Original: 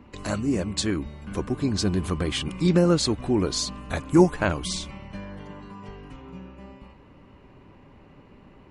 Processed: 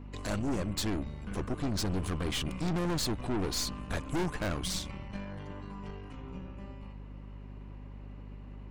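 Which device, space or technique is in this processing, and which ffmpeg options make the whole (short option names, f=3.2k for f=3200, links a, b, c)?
valve amplifier with mains hum: -af "aeval=exprs='(tanh(28.2*val(0)+0.7)-tanh(0.7))/28.2':c=same,aeval=exprs='val(0)+0.00631*(sin(2*PI*50*n/s)+sin(2*PI*2*50*n/s)/2+sin(2*PI*3*50*n/s)/3+sin(2*PI*4*50*n/s)/4+sin(2*PI*5*50*n/s)/5)':c=same"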